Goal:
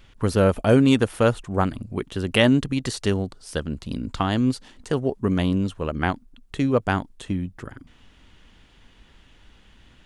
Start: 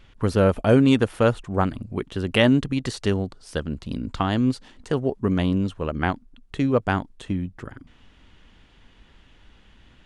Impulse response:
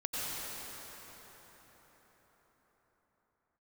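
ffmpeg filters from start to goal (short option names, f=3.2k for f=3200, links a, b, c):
-af "highshelf=f=6.9k:g=8.5"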